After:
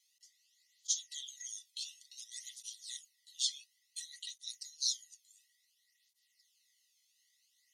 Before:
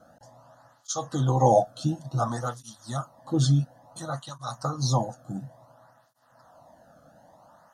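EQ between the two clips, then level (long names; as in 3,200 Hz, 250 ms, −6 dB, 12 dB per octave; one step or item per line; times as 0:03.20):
linear-phase brick-wall high-pass 1,900 Hz
high-shelf EQ 8,100 Hz −5.5 dB
+1.5 dB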